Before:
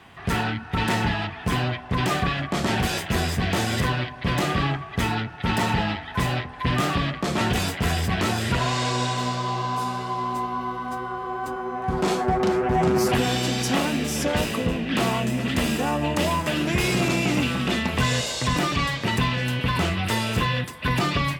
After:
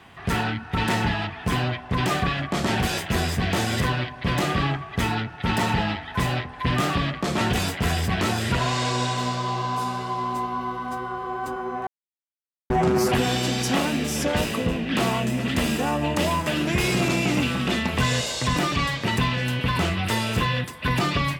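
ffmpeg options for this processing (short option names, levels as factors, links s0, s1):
-filter_complex "[0:a]asplit=3[s0][s1][s2];[s0]atrim=end=11.87,asetpts=PTS-STARTPTS,afade=t=out:st=11.866:d=0.004:c=hsin[s3];[s1]atrim=start=11.87:end=12.7,asetpts=PTS-STARTPTS,volume=0[s4];[s2]atrim=start=12.7,asetpts=PTS-STARTPTS,afade=t=in:d=0.004:c=hsin[s5];[s3][s4][s5]concat=n=3:v=0:a=1"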